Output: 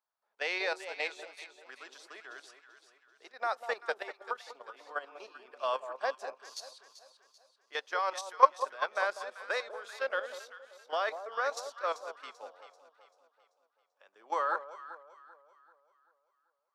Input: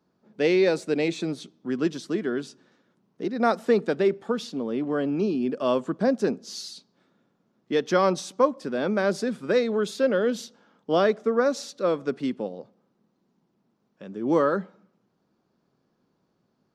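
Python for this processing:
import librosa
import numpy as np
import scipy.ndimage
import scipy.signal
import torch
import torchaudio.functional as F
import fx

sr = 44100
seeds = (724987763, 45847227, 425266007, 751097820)

y = scipy.signal.sosfilt(scipy.signal.butter(4, 770.0, 'highpass', fs=sr, output='sos'), x)
y = fx.high_shelf(y, sr, hz=7600.0, db=10.5)
y = fx.level_steps(y, sr, step_db=11)
y = fx.high_shelf(y, sr, hz=3400.0, db=-10.5)
y = fx.echo_alternate(y, sr, ms=194, hz=1000.0, feedback_pct=66, wet_db=-5.5)
y = fx.upward_expand(y, sr, threshold_db=-49.0, expansion=1.5)
y = F.gain(torch.from_numpy(y), 9.0).numpy()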